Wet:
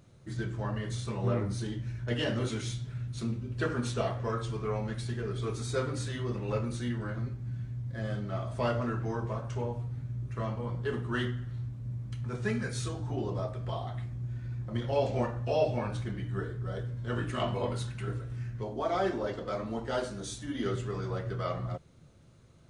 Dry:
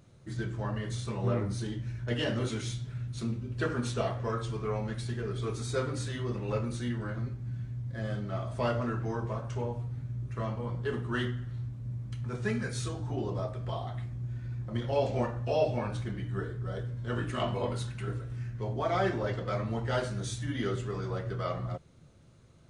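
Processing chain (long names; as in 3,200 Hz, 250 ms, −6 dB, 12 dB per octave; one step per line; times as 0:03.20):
0:18.63–0:20.66: graphic EQ with 10 bands 125 Hz −11 dB, 250 Hz +3 dB, 2,000 Hz −5 dB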